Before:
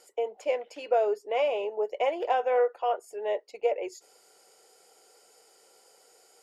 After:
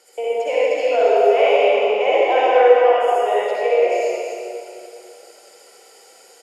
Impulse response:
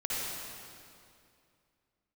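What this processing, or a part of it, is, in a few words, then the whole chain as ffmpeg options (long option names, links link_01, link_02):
stadium PA: -filter_complex "[0:a]highpass=frequency=160:width=0.5412,highpass=frequency=160:width=1.3066,equalizer=frequency=2400:width_type=o:width=1.2:gain=4,aecho=1:1:236.2|279.9:0.355|0.282[link_01];[1:a]atrim=start_sample=2205[link_02];[link_01][link_02]afir=irnorm=-1:irlink=0,volume=4.5dB"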